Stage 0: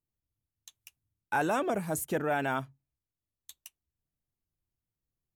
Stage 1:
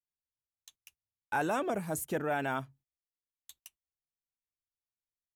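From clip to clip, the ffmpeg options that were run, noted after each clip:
ffmpeg -i in.wav -af "agate=range=-18dB:threshold=-58dB:ratio=16:detection=peak,volume=-2.5dB" out.wav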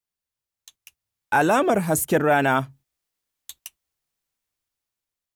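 ffmpeg -i in.wav -af "dynaudnorm=framelen=460:gausssize=5:maxgain=7dB,volume=6.5dB" out.wav

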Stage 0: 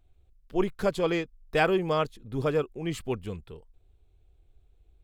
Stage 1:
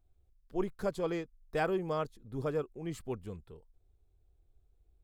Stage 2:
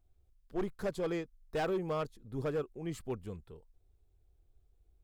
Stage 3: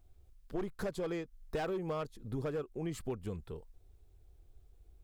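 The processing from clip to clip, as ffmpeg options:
ffmpeg -i in.wav -af "equalizer=frequency=2800:width=1.3:gain=-7.5,volume=-7dB" out.wav
ffmpeg -i in.wav -af "asoftclip=type=hard:threshold=-28.5dB" out.wav
ffmpeg -i in.wav -af "acompressor=threshold=-42dB:ratio=6,volume=7.5dB" out.wav

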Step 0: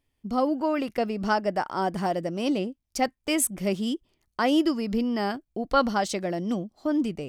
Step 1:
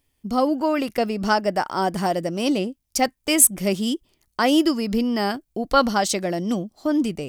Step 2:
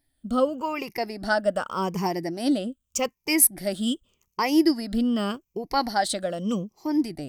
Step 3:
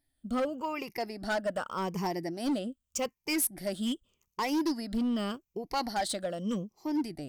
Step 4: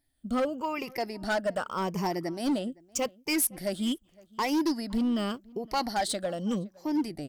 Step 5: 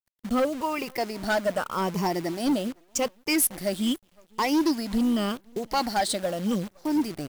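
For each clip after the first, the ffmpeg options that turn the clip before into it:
ffmpeg -i in.wav -af "highshelf=frequency=5300:gain=9.5,volume=4dB" out.wav
ffmpeg -i in.wav -af "afftfilt=real='re*pow(10,14/40*sin(2*PI*(0.78*log(max(b,1)*sr/1024/100)/log(2)-(-0.84)*(pts-256)/sr)))':imag='im*pow(10,14/40*sin(2*PI*(0.78*log(max(b,1)*sr/1024/100)/log(2)-(-0.84)*(pts-256)/sr)))':win_size=1024:overlap=0.75,volume=-6dB" out.wav
ffmpeg -i in.wav -af "asoftclip=type=hard:threshold=-20dB,volume=-5.5dB" out.wav
ffmpeg -i in.wav -filter_complex "[0:a]asplit=2[link_01][link_02];[link_02]adelay=513.1,volume=-24dB,highshelf=frequency=4000:gain=-11.5[link_03];[link_01][link_03]amix=inputs=2:normalize=0,volume=2.5dB" out.wav
ffmpeg -i in.wav -af "acrusher=bits=8:dc=4:mix=0:aa=0.000001,volume=3.5dB" out.wav

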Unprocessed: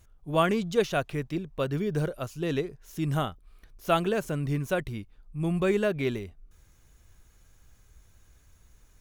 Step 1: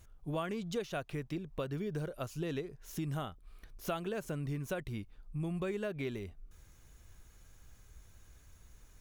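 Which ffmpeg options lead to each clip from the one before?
ffmpeg -i in.wav -af "acompressor=threshold=-35dB:ratio=5" out.wav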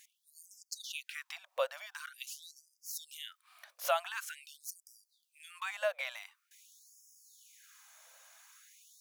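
ffmpeg -i in.wav -af "afftfilt=real='re*gte(b*sr/1024,500*pow(4900/500,0.5+0.5*sin(2*PI*0.46*pts/sr)))':imag='im*gte(b*sr/1024,500*pow(4900/500,0.5+0.5*sin(2*PI*0.46*pts/sr)))':win_size=1024:overlap=0.75,volume=8dB" out.wav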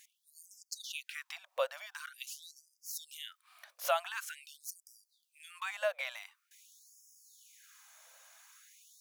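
ffmpeg -i in.wav -af anull out.wav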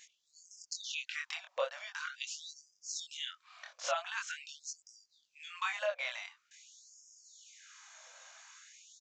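ffmpeg -i in.wav -af "alimiter=level_in=4dB:limit=-24dB:level=0:latency=1:release=486,volume=-4dB,flanger=delay=20:depth=5.2:speed=0.4,aresample=16000,aresample=44100,volume=8.5dB" out.wav

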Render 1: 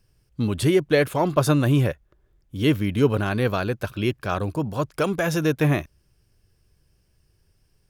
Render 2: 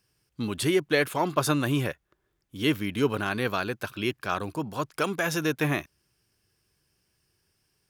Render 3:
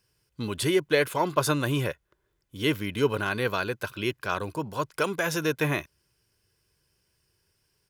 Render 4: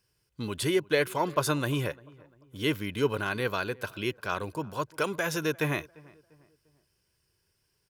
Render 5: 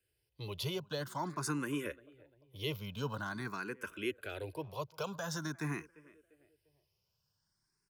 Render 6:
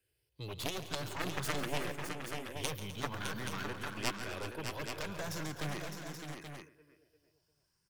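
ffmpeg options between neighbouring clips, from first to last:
ffmpeg -i in.wav -af "highpass=frequency=370:poles=1,equalizer=frequency=560:width=1.8:gain=-5.5" out.wav
ffmpeg -i in.wav -af "aecho=1:1:2:0.32" out.wav
ffmpeg -i in.wav -filter_complex "[0:a]asplit=2[link_01][link_02];[link_02]adelay=347,lowpass=frequency=1600:poles=1,volume=-23dB,asplit=2[link_03][link_04];[link_04]adelay=347,lowpass=frequency=1600:poles=1,volume=0.42,asplit=2[link_05][link_06];[link_06]adelay=347,lowpass=frequency=1600:poles=1,volume=0.42[link_07];[link_01][link_03][link_05][link_07]amix=inputs=4:normalize=0,volume=-2.5dB" out.wav
ffmpeg -i in.wav -filter_complex "[0:a]acrossover=split=160|500|3300[link_01][link_02][link_03][link_04];[link_03]alimiter=level_in=0.5dB:limit=-24dB:level=0:latency=1,volume=-0.5dB[link_05];[link_01][link_02][link_05][link_04]amix=inputs=4:normalize=0,asplit=2[link_06][link_07];[link_07]afreqshift=0.47[link_08];[link_06][link_08]amix=inputs=2:normalize=1,volume=-4.5dB" out.wav
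ffmpeg -i in.wav -filter_complex "[0:a]aeval=exprs='0.0596*(cos(1*acos(clip(val(0)/0.0596,-1,1)))-cos(1*PI/2))+0.015*(cos(2*acos(clip(val(0)/0.0596,-1,1)))-cos(2*PI/2))+0.0299*(cos(3*acos(clip(val(0)/0.0596,-1,1)))-cos(3*PI/2))':channel_layout=same,asplit=2[link_01][link_02];[link_02]aecho=0:1:138|172|255|375|609|828:0.2|0.133|0.158|0.2|0.473|0.422[link_03];[link_01][link_03]amix=inputs=2:normalize=0,volume=7dB" out.wav

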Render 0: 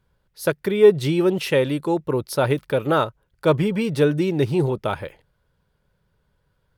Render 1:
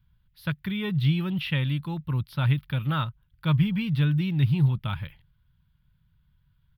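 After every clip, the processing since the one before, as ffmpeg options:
ffmpeg -i in.wav -filter_complex "[0:a]acrossover=split=4600[link_01][link_02];[link_02]acompressor=threshold=-45dB:ratio=4:attack=1:release=60[link_03];[link_01][link_03]amix=inputs=2:normalize=0,firequalizer=gain_entry='entry(140,0);entry(410,-30);entry(1000,-13);entry(1800,-10);entry(3300,-4);entry(6900,-28);entry(13000,-4)':delay=0.05:min_phase=1,volume=4dB" out.wav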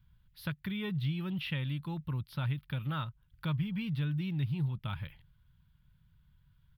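ffmpeg -i in.wav -af "acompressor=threshold=-39dB:ratio=2" out.wav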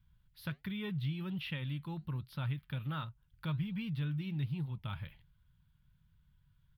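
ffmpeg -i in.wav -af "flanger=delay=3.7:depth=4.7:regen=-80:speed=1.3:shape=sinusoidal,volume=1dB" out.wav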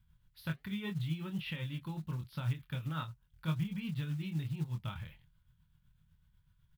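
ffmpeg -i in.wav -filter_complex "[0:a]asplit=2[link_01][link_02];[link_02]adelay=25,volume=-5dB[link_03];[link_01][link_03]amix=inputs=2:normalize=0,tremolo=f=8:d=0.46,acrusher=bits=7:mode=log:mix=0:aa=0.000001,volume=1dB" out.wav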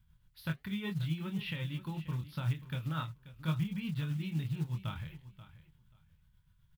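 ffmpeg -i in.wav -af "aecho=1:1:534|1068:0.168|0.0285,volume=1.5dB" out.wav

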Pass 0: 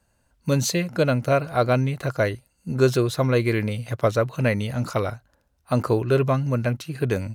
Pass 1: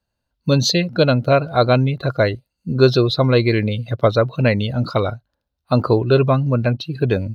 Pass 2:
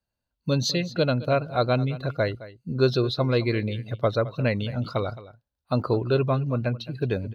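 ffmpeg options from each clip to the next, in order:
ffmpeg -i in.wav -af "equalizer=frequency=2000:width_type=o:width=1:gain=-3,equalizer=frequency=4000:width_type=o:width=1:gain=10,equalizer=frequency=8000:width_type=o:width=1:gain=-10,afftdn=noise_reduction=16:noise_floor=-35,volume=5.5dB" out.wav
ffmpeg -i in.wav -af "aecho=1:1:216:0.141,volume=-8dB" out.wav

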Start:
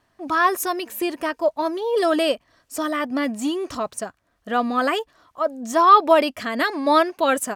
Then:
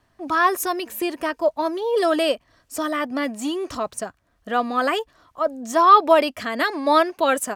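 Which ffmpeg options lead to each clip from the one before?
ffmpeg -i in.wav -filter_complex "[0:a]lowshelf=frequency=140:gain=7.5,acrossover=split=280[link_01][link_02];[link_01]acompressor=threshold=-39dB:ratio=6[link_03];[link_03][link_02]amix=inputs=2:normalize=0" out.wav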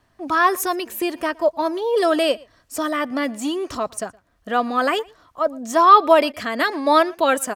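ffmpeg -i in.wav -filter_complex "[0:a]asplit=2[link_01][link_02];[link_02]adelay=116.6,volume=-25dB,highshelf=frequency=4000:gain=-2.62[link_03];[link_01][link_03]amix=inputs=2:normalize=0,volume=1.5dB" out.wav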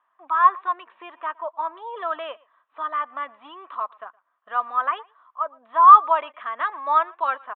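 ffmpeg -i in.wav -af "highpass=frequency=1100:width_type=q:width=4.8,tiltshelf=frequency=1400:gain=6.5,aresample=8000,aresample=44100,volume=-11.5dB" out.wav

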